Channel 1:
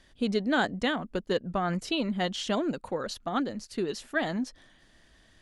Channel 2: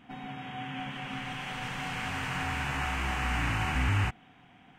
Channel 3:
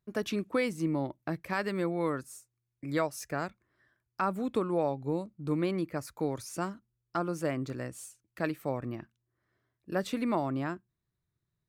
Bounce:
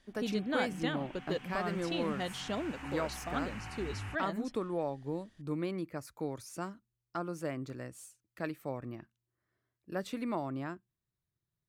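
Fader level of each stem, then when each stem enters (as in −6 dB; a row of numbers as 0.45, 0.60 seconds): −8.0, −14.5, −5.5 decibels; 0.00, 0.05, 0.00 seconds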